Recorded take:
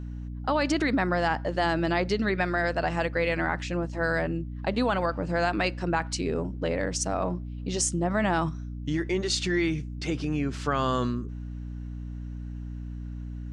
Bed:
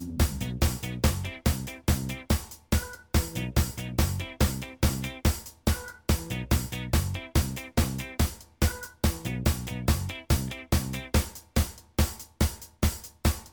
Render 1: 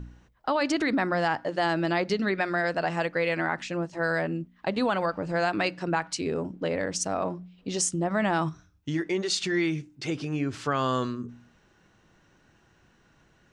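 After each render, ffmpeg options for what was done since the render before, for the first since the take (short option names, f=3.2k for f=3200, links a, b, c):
-af "bandreject=f=60:t=h:w=4,bandreject=f=120:t=h:w=4,bandreject=f=180:t=h:w=4,bandreject=f=240:t=h:w=4,bandreject=f=300:t=h:w=4"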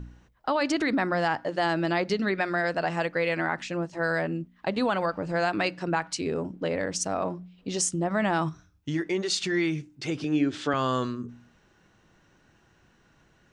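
-filter_complex "[0:a]asettb=1/sr,asplit=3[a][b][c];[a]atrim=end=10.244[d];[b]atrim=start=10.24:end=10.74,asetpts=PTS-STARTPTS,afade=t=in:d=0.004:c=qsin,afade=t=out:st=0.496:d=0.004:c=qsin,highpass=110,equalizer=f=120:t=q:w=4:g=-7,equalizer=f=310:t=q:w=4:g=8,equalizer=f=540:t=q:w=4:g=3,equalizer=f=1.1k:t=q:w=4:g=-5,equalizer=f=1.7k:t=q:w=4:g=3,equalizer=f=3.5k:t=q:w=4:g=10,lowpass=f=9k:w=0.5412,lowpass=f=9k:w=1.3066[e];[c]atrim=start=10.736[f];[d][e]acrossfade=d=0.004:c1=hsin:c2=qsin[g];[g][f]acrossfade=d=0.004:c1=qsin:c2=hsin"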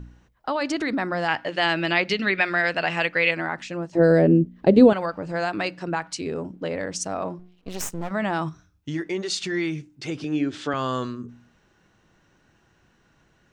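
-filter_complex "[0:a]asettb=1/sr,asplit=3[a][b][c];[a]atrim=end=1.284[d];[b]atrim=start=1.28:end=3.31,asetpts=PTS-STARTPTS,afade=t=in:d=0.004:c=qsin,afade=t=out:st=2.026:d=0.004:c=qsin,equalizer=f=2.6k:t=o:w=1.3:g=13[e];[c]atrim=start=3.306[f];[d][e]acrossfade=d=0.004:c1=hsin:c2=qsin[g];[g][f]acrossfade=d=0.004:c1=qsin:c2=hsin,asettb=1/sr,asplit=3[h][i][j];[h]atrim=end=3.954[k];[i]atrim=start=3.95:end=4.93,asetpts=PTS-STARTPTS,afade=t=in:d=0.004:c=qsin,afade=t=out:st=0.976:d=0.004:c=qsin,lowshelf=f=680:t=q:w=1.5:g=13[l];[j]atrim=start=4.926[m];[k][l]acrossfade=d=0.004:c1=hsin:c2=qsin[n];[n][m]acrossfade=d=0.004:c1=qsin:c2=hsin,asettb=1/sr,asplit=3[o][p][q];[o]atrim=end=7.394[r];[p]atrim=start=7.39:end=8.11,asetpts=PTS-STARTPTS,afade=t=in:d=0.004:c=qsin,afade=t=out:st=0.716:d=0.004:c=qsin,aeval=exprs='max(val(0),0)':c=same[s];[q]atrim=start=8.106[t];[r][s]acrossfade=d=0.004:c1=hsin:c2=qsin[u];[u][t]acrossfade=d=0.004:c1=qsin:c2=hsin"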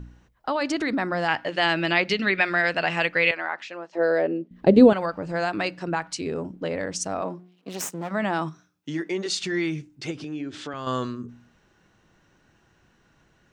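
-filter_complex "[0:a]asettb=1/sr,asplit=3[a][b][c];[a]atrim=end=3.314[d];[b]atrim=start=3.31:end=4.51,asetpts=PTS-STARTPTS,afade=t=in:d=0.004:c=qsin,afade=t=out:st=1.196:d=0.004:c=qsin,highpass=570,lowpass=4.5k[e];[c]atrim=start=4.506[f];[d][e]acrossfade=d=0.004:c1=hsin:c2=qsin[g];[g][f]acrossfade=d=0.004:c1=qsin:c2=hsin,asettb=1/sr,asplit=3[h][i][j];[h]atrim=end=7.214[k];[i]atrim=start=7.21:end=9.26,asetpts=PTS-STARTPTS,afade=t=in:d=0.004:c=qsin,afade=t=out:st=2.046:d=0.004:c=qsin,highpass=f=160:w=0.5412,highpass=f=160:w=1.3066[l];[j]atrim=start=9.256[m];[k][l]acrossfade=d=0.004:c1=hsin:c2=qsin[n];[n][m]acrossfade=d=0.004:c1=qsin:c2=hsin,asettb=1/sr,asplit=3[o][p][q];[o]atrim=end=10.114[r];[p]atrim=start=10.11:end=10.87,asetpts=PTS-STARTPTS,afade=t=in:d=0.004:c=qsin,afade=t=out:st=0.756:d=0.004:c=qsin,acompressor=threshold=-35dB:ratio=2:attack=3.2:release=140:knee=1:detection=peak[s];[q]atrim=start=10.866[t];[r][s]acrossfade=d=0.004:c1=hsin:c2=qsin[u];[u][t]acrossfade=d=0.004:c1=qsin:c2=hsin"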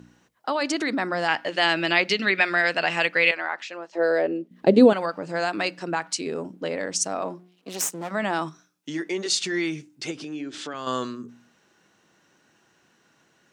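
-af "highpass=200,equalizer=f=9.7k:t=o:w=2.2:g=6.5"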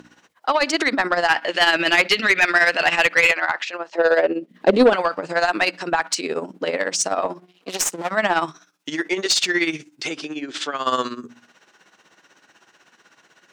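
-filter_complex "[0:a]tremolo=f=16:d=0.71,asplit=2[a][b];[b]highpass=f=720:p=1,volume=19dB,asoftclip=type=tanh:threshold=-4dB[c];[a][c]amix=inputs=2:normalize=0,lowpass=f=4.9k:p=1,volume=-6dB"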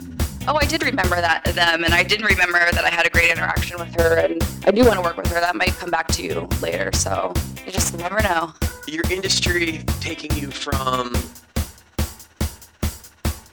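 -filter_complex "[1:a]volume=1.5dB[a];[0:a][a]amix=inputs=2:normalize=0"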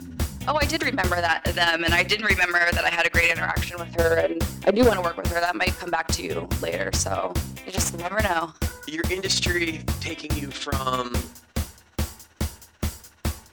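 -af "volume=-4dB"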